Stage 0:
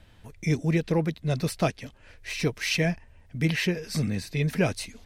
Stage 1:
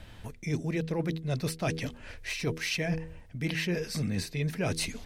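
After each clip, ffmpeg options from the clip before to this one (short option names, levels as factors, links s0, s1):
-af "bandreject=f=80.52:t=h:w=4,bandreject=f=161.04:t=h:w=4,bandreject=f=241.56:t=h:w=4,bandreject=f=322.08:t=h:w=4,bandreject=f=402.6:t=h:w=4,bandreject=f=483.12:t=h:w=4,areverse,acompressor=threshold=0.0178:ratio=6,areverse,volume=2.11"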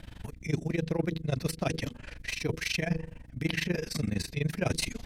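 -af "aeval=exprs='val(0)+0.00355*(sin(2*PI*60*n/s)+sin(2*PI*2*60*n/s)/2+sin(2*PI*3*60*n/s)/3+sin(2*PI*4*60*n/s)/4+sin(2*PI*5*60*n/s)/5)':c=same,tremolo=f=24:d=0.919,volume=1.58"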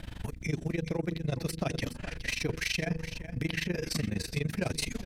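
-af "acompressor=threshold=0.0251:ratio=6,aecho=1:1:418:0.266,volume=1.58"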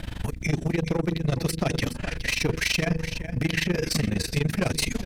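-af "aeval=exprs='clip(val(0),-1,0.0376)':c=same,volume=2.51"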